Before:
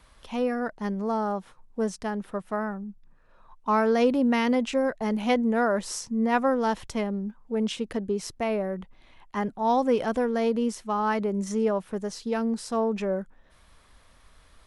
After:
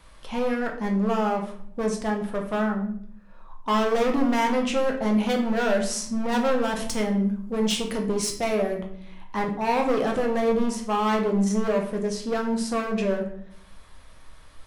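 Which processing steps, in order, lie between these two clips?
0:06.76–0:08.78: high-shelf EQ 3,700 Hz +10 dB
gain into a clipping stage and back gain 25 dB
rectangular room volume 100 cubic metres, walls mixed, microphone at 0.67 metres
level +2.5 dB

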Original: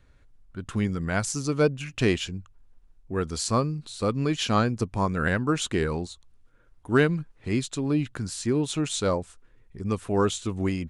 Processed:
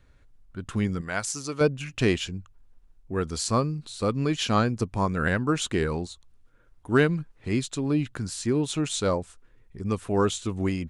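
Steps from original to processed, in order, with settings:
0:01.01–0:01.61: low-shelf EQ 360 Hz −11.5 dB

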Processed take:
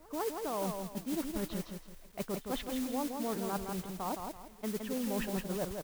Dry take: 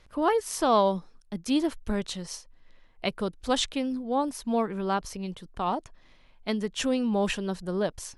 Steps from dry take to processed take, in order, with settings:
Bessel low-pass filter 1,300 Hz, order 2
low-shelf EQ 240 Hz −2 dB
reversed playback
downward compressor 8 to 1, threshold −33 dBFS, peak gain reduction 14.5 dB
reversed playback
tempo change 1.4×
noise that follows the level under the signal 11 dB
echo ahead of the sound 154 ms −23.5 dB
feedback echo at a low word length 166 ms, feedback 35%, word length 10 bits, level −5 dB

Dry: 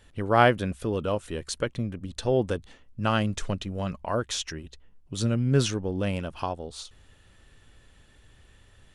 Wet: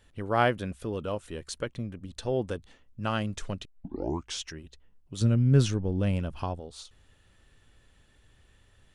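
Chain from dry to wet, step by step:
0:03.65: tape start 0.74 s
0:05.21–0:06.60: low-shelf EQ 220 Hz +11 dB
level −5 dB

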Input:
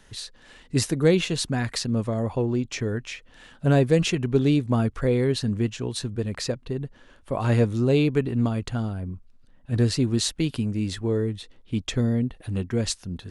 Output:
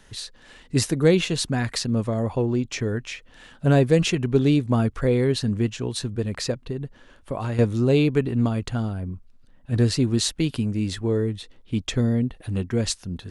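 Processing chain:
0:06.65–0:07.59: downward compressor 6 to 1, threshold −26 dBFS, peak gain reduction 9.5 dB
level +1.5 dB

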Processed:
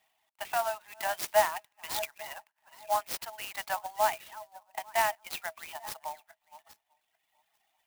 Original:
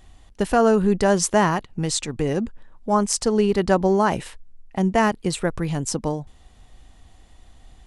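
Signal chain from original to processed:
feedback delay that plays each chunk backwards 421 ms, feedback 40%, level −14 dB
Butterworth low-pass 6,200 Hz 96 dB per octave
noise gate −38 dBFS, range −7 dB
reverb reduction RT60 1.4 s
dynamic equaliser 990 Hz, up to −4 dB, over −33 dBFS, Q 2.7
Chebyshev high-pass with heavy ripple 620 Hz, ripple 9 dB
converter with an unsteady clock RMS 0.045 ms

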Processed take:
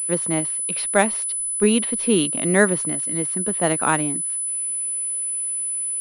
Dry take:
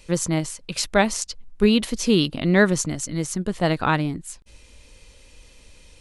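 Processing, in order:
three-way crossover with the lows and the highs turned down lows −19 dB, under 170 Hz, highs −15 dB, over 3,800 Hz
switching amplifier with a slow clock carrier 10,000 Hz
level +1 dB

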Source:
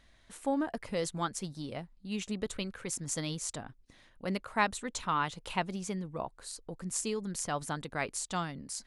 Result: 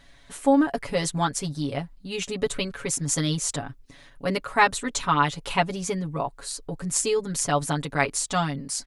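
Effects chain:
comb filter 7.1 ms, depth 85%
level +7.5 dB

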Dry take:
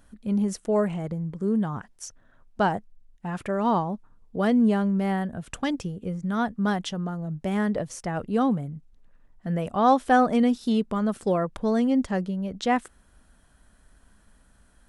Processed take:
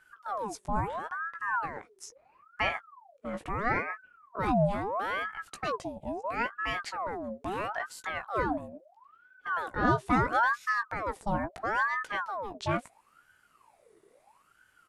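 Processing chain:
double-tracking delay 17 ms −7.5 dB
ring modulator whose carrier an LFO sweeps 950 Hz, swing 60%, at 0.75 Hz
level −4.5 dB

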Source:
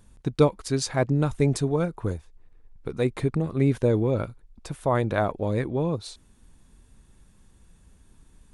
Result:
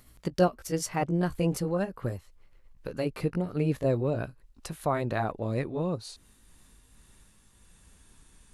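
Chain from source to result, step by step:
pitch glide at a constant tempo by +3.5 semitones ending unshifted
one half of a high-frequency compander encoder only
level −3.5 dB

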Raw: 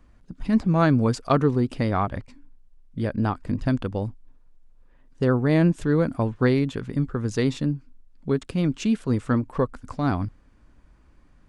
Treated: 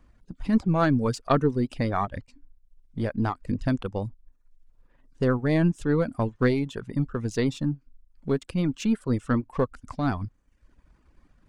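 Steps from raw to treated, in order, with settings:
gain on one half-wave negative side −3 dB
reverb reduction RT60 0.69 s

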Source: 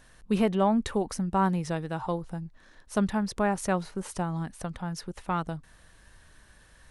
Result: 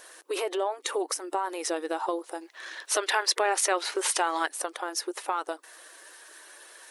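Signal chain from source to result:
spectral magnitudes quantised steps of 15 dB
high-shelf EQ 6,300 Hz +8.5 dB
brickwall limiter −21.5 dBFS, peak gain reduction 9.5 dB
linear-phase brick-wall high-pass 300 Hz
downward compressor 2.5 to 1, threshold −36 dBFS, peak gain reduction 7 dB
0:02.41–0:04.47: parametric band 2,600 Hz +11 dB 2.7 octaves
level +8.5 dB

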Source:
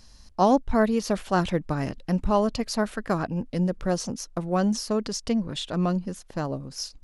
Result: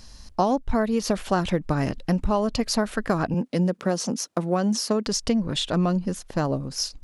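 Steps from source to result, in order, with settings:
0:03.34–0:05.07: high-pass filter 160 Hz 24 dB per octave
downward compressor 10 to 1, threshold −24 dBFS, peak gain reduction 10 dB
level +6 dB

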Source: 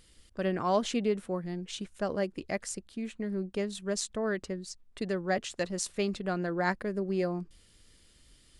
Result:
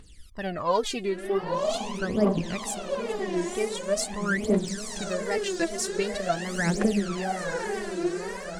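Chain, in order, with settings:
feedback delay with all-pass diffusion 918 ms, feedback 61%, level −4.5 dB
tape wow and flutter 130 cents
phase shifter 0.44 Hz, delay 3.1 ms, feedback 79%

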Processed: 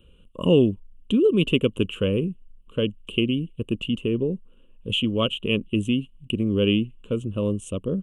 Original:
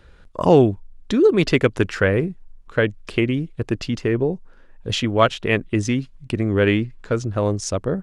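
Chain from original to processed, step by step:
drawn EQ curve 130 Hz 0 dB, 210 Hz +7 dB, 330 Hz +1 dB, 530 Hz +1 dB, 760 Hz −18 dB, 1,100 Hz −4 dB, 1,900 Hz −23 dB, 2,900 Hz +14 dB, 4,900 Hz −30 dB, 8,400 Hz +3 dB
level −5.5 dB

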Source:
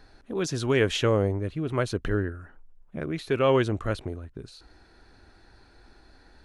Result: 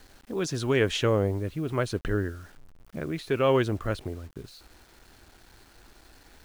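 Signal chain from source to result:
bit reduction 9 bits
level −1 dB

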